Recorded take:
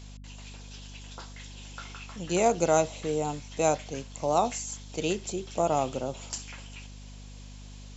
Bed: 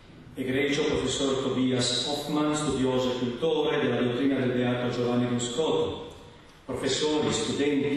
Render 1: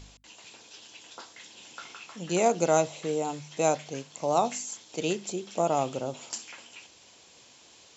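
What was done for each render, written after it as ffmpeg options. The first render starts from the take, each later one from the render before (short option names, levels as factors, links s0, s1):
-af "bandreject=f=50:t=h:w=4,bandreject=f=100:t=h:w=4,bandreject=f=150:t=h:w=4,bandreject=f=200:t=h:w=4,bandreject=f=250:t=h:w=4"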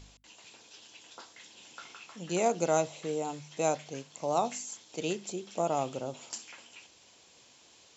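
-af "volume=0.631"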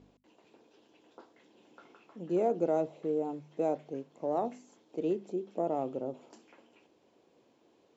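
-filter_complex "[0:a]asplit=2[s0][s1];[s1]aeval=exprs='clip(val(0),-1,0.0447)':c=same,volume=0.631[s2];[s0][s2]amix=inputs=2:normalize=0,bandpass=f=340:t=q:w=1.3:csg=0"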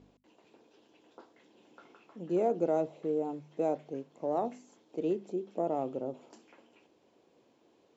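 -af anull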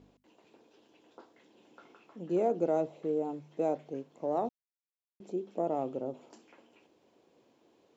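-filter_complex "[0:a]asplit=3[s0][s1][s2];[s0]atrim=end=4.49,asetpts=PTS-STARTPTS,afade=t=out:st=4.486:d=0.004:c=hsin[s3];[s1]atrim=start=4.49:end=5.2,asetpts=PTS-STARTPTS,volume=0[s4];[s2]atrim=start=5.2,asetpts=PTS-STARTPTS,afade=t=in:d=0.004:c=hsin[s5];[s3][s4][s5]concat=n=3:v=0:a=1"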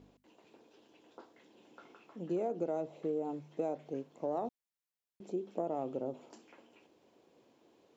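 -af "acompressor=threshold=0.0282:ratio=6"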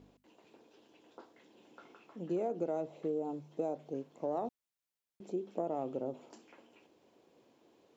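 -filter_complex "[0:a]asettb=1/sr,asplit=3[s0][s1][s2];[s0]atrim=end=3.084[s3];[s1]atrim=start=3.08:end=4.01,asetpts=PTS-STARTPTS,afade=t=in:d=0.004:c=qsin,afade=t=out:st=0.926:d=0.004:c=qsin,equalizer=f=2000:w=1.4:g=-6.5[s4];[s2]atrim=start=4.006[s5];[s3][s4]acrossfade=d=0.004:c1=hsin:c2=qsin[s6];[s6][s5]acrossfade=d=0.004:c1=qsin:c2=hsin"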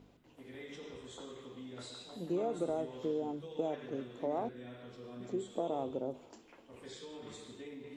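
-filter_complex "[1:a]volume=0.075[s0];[0:a][s0]amix=inputs=2:normalize=0"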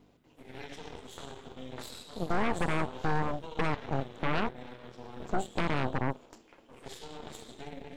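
-af "aeval=exprs='0.0841*(cos(1*acos(clip(val(0)/0.0841,-1,1)))-cos(1*PI/2))+0.0422*(cos(8*acos(clip(val(0)/0.0841,-1,1)))-cos(8*PI/2))':c=same"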